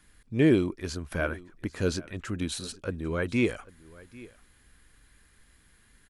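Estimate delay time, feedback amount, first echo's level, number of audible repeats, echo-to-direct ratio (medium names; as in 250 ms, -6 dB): 794 ms, no regular repeats, -21.0 dB, 1, -21.0 dB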